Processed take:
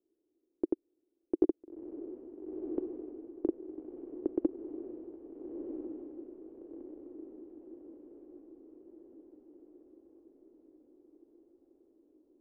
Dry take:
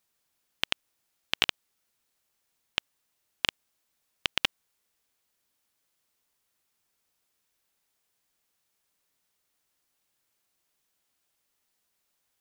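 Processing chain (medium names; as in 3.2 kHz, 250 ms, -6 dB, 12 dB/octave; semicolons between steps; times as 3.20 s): four-pole ladder low-pass 390 Hz, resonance 60%; resonant low shelf 230 Hz -11 dB, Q 3; echo that smears into a reverb 1357 ms, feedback 57%, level -6 dB; trim +15 dB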